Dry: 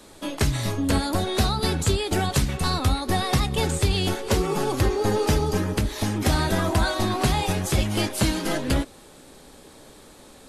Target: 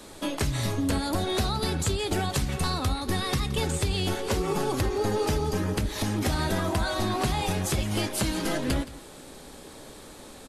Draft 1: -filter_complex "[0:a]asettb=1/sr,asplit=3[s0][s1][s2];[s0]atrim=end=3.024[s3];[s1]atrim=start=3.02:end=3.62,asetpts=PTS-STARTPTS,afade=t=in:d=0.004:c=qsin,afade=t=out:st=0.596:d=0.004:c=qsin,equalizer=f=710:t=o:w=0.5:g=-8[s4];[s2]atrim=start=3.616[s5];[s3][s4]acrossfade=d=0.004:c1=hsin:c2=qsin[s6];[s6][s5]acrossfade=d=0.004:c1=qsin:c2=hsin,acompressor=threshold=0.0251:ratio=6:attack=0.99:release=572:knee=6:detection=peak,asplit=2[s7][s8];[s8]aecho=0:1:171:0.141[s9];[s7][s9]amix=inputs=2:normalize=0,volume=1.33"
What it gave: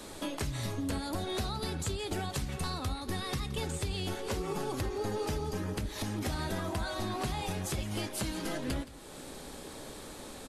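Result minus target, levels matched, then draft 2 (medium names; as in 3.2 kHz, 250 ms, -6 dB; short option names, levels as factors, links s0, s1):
compression: peak gain reduction +8 dB
-filter_complex "[0:a]asettb=1/sr,asplit=3[s0][s1][s2];[s0]atrim=end=3.024[s3];[s1]atrim=start=3.02:end=3.62,asetpts=PTS-STARTPTS,afade=t=in:d=0.004:c=qsin,afade=t=out:st=0.596:d=0.004:c=qsin,equalizer=f=710:t=o:w=0.5:g=-8[s4];[s2]atrim=start=3.616[s5];[s3][s4]acrossfade=d=0.004:c1=hsin:c2=qsin[s6];[s6][s5]acrossfade=d=0.004:c1=qsin:c2=hsin,acompressor=threshold=0.075:ratio=6:attack=0.99:release=572:knee=6:detection=peak,asplit=2[s7][s8];[s8]aecho=0:1:171:0.141[s9];[s7][s9]amix=inputs=2:normalize=0,volume=1.33"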